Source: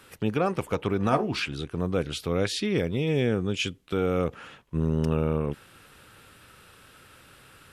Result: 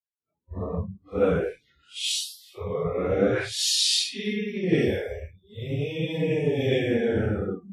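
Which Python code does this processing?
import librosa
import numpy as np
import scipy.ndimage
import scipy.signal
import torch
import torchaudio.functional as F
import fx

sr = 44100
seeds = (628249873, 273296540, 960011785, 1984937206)

y = fx.paulstretch(x, sr, seeds[0], factor=4.4, window_s=0.05, from_s=1.68)
y = fx.noise_reduce_blind(y, sr, reduce_db=27)
y = fx.band_widen(y, sr, depth_pct=100)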